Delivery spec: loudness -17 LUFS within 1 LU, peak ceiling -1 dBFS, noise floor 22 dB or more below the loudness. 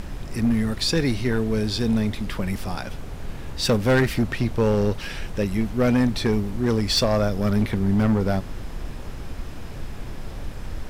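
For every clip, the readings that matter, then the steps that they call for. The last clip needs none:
clipped samples 1.8%; clipping level -14.0 dBFS; noise floor -35 dBFS; noise floor target -45 dBFS; loudness -23.0 LUFS; peak level -14.0 dBFS; loudness target -17.0 LUFS
-> clip repair -14 dBFS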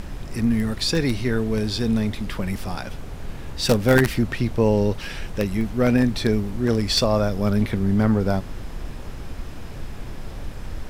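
clipped samples 0.0%; noise floor -35 dBFS; noise floor target -44 dBFS
-> noise print and reduce 9 dB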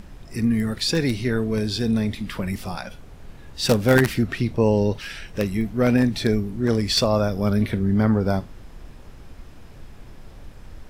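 noise floor -44 dBFS; loudness -22.0 LUFS; peak level -4.5 dBFS; loudness target -17.0 LUFS
-> trim +5 dB; peak limiter -1 dBFS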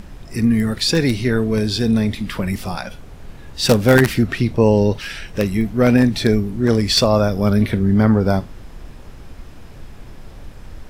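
loudness -17.0 LUFS; peak level -1.0 dBFS; noise floor -39 dBFS

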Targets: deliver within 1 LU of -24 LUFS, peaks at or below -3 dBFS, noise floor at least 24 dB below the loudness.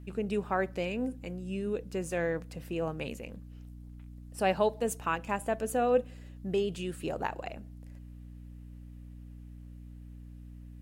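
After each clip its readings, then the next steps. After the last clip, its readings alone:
hum 60 Hz; highest harmonic 300 Hz; hum level -45 dBFS; loudness -33.0 LUFS; peak level -15.0 dBFS; loudness target -24.0 LUFS
-> de-hum 60 Hz, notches 5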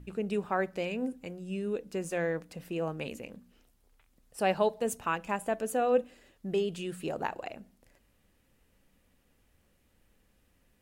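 hum not found; loudness -33.0 LUFS; peak level -15.0 dBFS; loudness target -24.0 LUFS
-> trim +9 dB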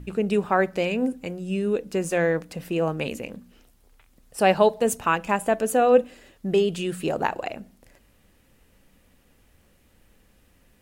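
loudness -24.0 LUFS; peak level -6.0 dBFS; noise floor -61 dBFS

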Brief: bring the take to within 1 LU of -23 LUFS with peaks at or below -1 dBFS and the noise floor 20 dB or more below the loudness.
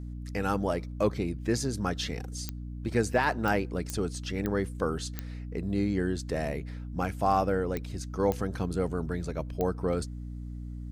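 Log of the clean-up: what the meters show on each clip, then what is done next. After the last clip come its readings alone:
clicks found 8; hum 60 Hz; highest harmonic 300 Hz; hum level -36 dBFS; loudness -31.0 LUFS; peak level -13.5 dBFS; loudness target -23.0 LUFS
-> de-click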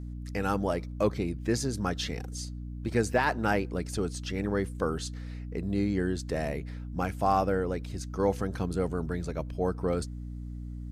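clicks found 0; hum 60 Hz; highest harmonic 300 Hz; hum level -36 dBFS
-> de-hum 60 Hz, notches 5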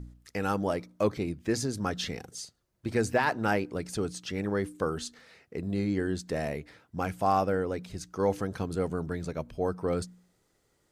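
hum not found; loudness -31.5 LUFS; peak level -13.5 dBFS; loudness target -23.0 LUFS
-> trim +8.5 dB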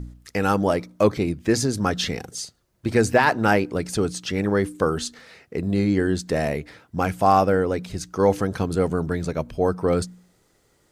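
loudness -23.0 LUFS; peak level -5.0 dBFS; noise floor -64 dBFS

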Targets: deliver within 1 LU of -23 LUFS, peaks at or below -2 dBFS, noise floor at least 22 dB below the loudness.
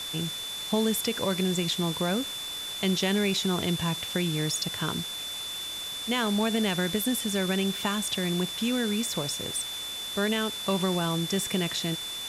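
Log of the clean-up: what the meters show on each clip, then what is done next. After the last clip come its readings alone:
steady tone 3.5 kHz; tone level -34 dBFS; noise floor -36 dBFS; noise floor target -50 dBFS; loudness -28.0 LUFS; peak level -14.0 dBFS; loudness target -23.0 LUFS
-> band-stop 3.5 kHz, Q 30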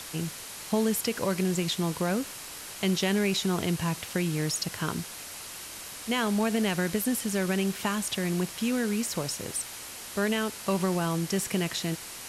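steady tone not found; noise floor -42 dBFS; noise floor target -51 dBFS
-> noise reduction 9 dB, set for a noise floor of -42 dBFS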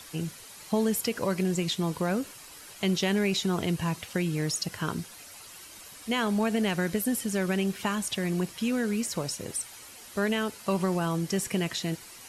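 noise floor -48 dBFS; noise floor target -51 dBFS
-> noise reduction 6 dB, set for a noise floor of -48 dBFS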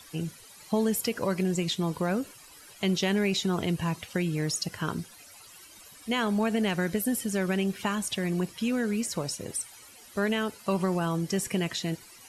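noise floor -51 dBFS; loudness -29.0 LUFS; peak level -15.5 dBFS; loudness target -23.0 LUFS
-> trim +6 dB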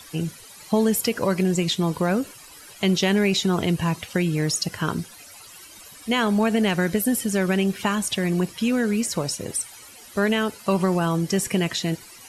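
loudness -23.0 LUFS; peak level -9.5 dBFS; noise floor -45 dBFS

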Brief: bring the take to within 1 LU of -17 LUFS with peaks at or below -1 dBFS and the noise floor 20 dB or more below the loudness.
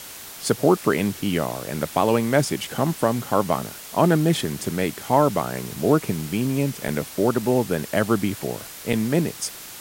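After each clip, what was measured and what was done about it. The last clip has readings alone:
dropouts 3; longest dropout 2.8 ms; noise floor -39 dBFS; noise floor target -43 dBFS; loudness -23.0 LUFS; peak level -4.0 dBFS; loudness target -17.0 LUFS
-> interpolate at 2.65/6.88/8.93 s, 2.8 ms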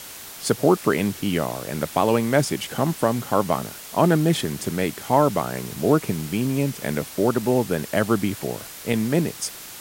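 dropouts 0; noise floor -39 dBFS; noise floor target -43 dBFS
-> noise reduction 6 dB, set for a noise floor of -39 dBFS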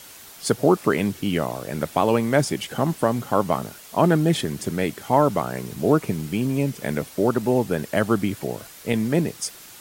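noise floor -44 dBFS; loudness -23.0 LUFS; peak level -4.0 dBFS; loudness target -17.0 LUFS
-> trim +6 dB; peak limiter -1 dBFS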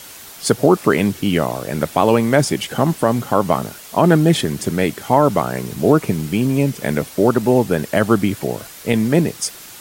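loudness -17.5 LUFS; peak level -1.0 dBFS; noise floor -38 dBFS

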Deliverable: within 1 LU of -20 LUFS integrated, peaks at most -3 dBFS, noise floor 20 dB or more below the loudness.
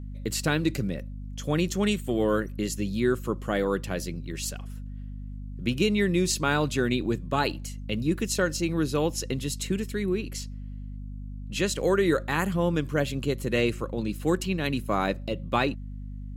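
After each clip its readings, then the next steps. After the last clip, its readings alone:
hum 50 Hz; highest harmonic 250 Hz; hum level -35 dBFS; loudness -27.5 LUFS; peak level -10.0 dBFS; loudness target -20.0 LUFS
-> de-hum 50 Hz, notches 5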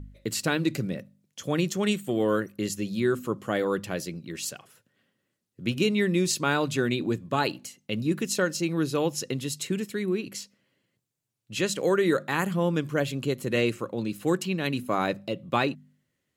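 hum not found; loudness -28.0 LUFS; peak level -10.0 dBFS; loudness target -20.0 LUFS
-> trim +8 dB; peak limiter -3 dBFS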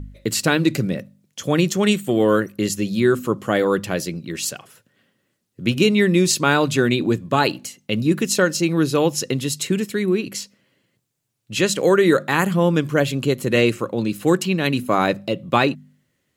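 loudness -20.0 LUFS; peak level -3.0 dBFS; noise floor -72 dBFS

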